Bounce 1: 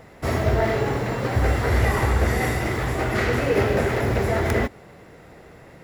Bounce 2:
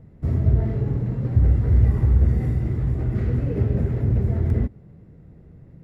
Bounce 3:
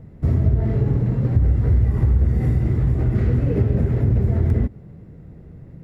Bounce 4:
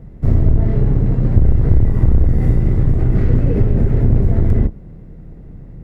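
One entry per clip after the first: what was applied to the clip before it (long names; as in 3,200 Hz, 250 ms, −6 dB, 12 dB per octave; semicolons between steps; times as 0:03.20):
drawn EQ curve 160 Hz 0 dB, 750 Hz −23 dB, 6,300 Hz −30 dB; level +5 dB
downward compressor 4 to 1, threshold −19 dBFS, peak gain reduction 8 dB; level +5.5 dB
sub-octave generator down 2 octaves, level +2 dB; level +2 dB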